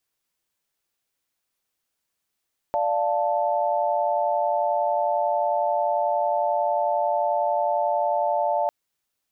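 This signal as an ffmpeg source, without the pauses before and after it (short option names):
-f lavfi -i "aevalsrc='0.0596*(sin(2*PI*587.33*t)+sin(2*PI*698.46*t)+sin(2*PI*880*t))':d=5.95:s=44100"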